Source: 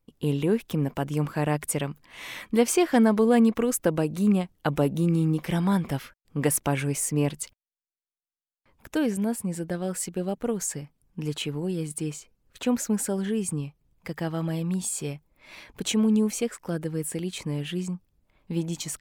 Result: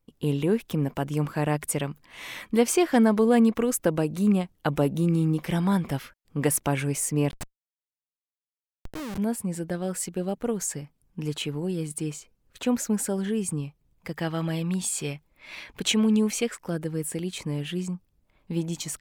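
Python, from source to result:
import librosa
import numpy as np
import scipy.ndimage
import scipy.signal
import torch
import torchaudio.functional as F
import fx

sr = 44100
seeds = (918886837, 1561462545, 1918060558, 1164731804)

y = fx.schmitt(x, sr, flips_db=-28.5, at=(7.31, 9.18))
y = fx.peak_eq(y, sr, hz=2600.0, db=6.0, octaves=2.1, at=(14.19, 16.55))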